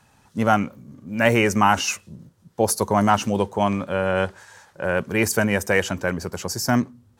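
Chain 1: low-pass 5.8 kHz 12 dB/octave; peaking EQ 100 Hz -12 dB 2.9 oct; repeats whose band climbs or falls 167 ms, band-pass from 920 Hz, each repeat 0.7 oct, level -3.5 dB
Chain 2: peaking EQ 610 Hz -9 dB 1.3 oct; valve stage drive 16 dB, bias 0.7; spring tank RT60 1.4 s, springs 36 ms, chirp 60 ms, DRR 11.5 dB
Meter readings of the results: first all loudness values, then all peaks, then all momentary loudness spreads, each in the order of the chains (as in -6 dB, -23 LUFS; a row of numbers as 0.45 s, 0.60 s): -23.5 LUFS, -29.5 LUFS; -4.5 dBFS, -12.5 dBFS; 12 LU, 12 LU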